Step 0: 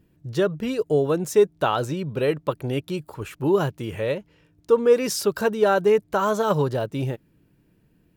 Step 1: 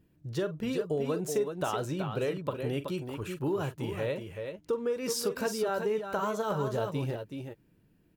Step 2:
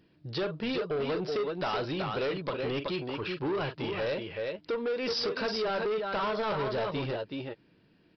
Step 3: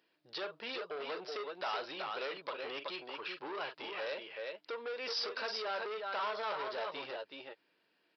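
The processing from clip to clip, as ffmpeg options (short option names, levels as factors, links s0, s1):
-af "acompressor=threshold=0.0794:ratio=6,aecho=1:1:43|46|376|387:0.211|0.106|0.447|0.178,volume=0.531"
-af "aemphasis=mode=production:type=bsi,aresample=11025,asoftclip=type=tanh:threshold=0.0188,aresample=44100,volume=2.37"
-af "highpass=630,volume=0.631"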